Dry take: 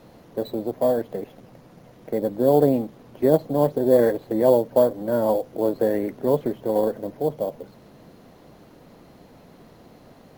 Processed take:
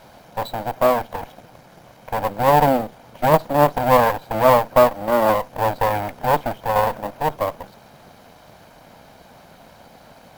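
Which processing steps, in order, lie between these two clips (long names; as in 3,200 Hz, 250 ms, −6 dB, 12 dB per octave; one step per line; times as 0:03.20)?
lower of the sound and its delayed copy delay 1.3 ms
low-shelf EQ 290 Hz −8.5 dB
level +7.5 dB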